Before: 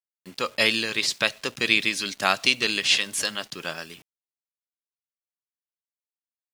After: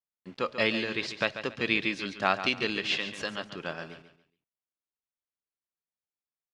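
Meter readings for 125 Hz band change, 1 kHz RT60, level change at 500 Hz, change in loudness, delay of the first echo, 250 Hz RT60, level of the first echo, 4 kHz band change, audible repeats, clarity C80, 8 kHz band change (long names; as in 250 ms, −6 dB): 0.0 dB, no reverb audible, −1.0 dB, −6.5 dB, 140 ms, no reverb audible, −11.0 dB, −9.5 dB, 3, no reverb audible, −18.5 dB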